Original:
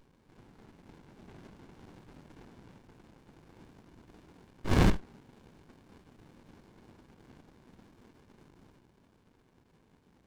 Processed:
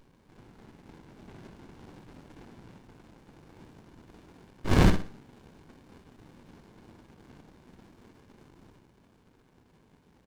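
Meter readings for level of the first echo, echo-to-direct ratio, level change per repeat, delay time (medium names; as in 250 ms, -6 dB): -10.5 dB, -10.0 dB, -9.5 dB, 61 ms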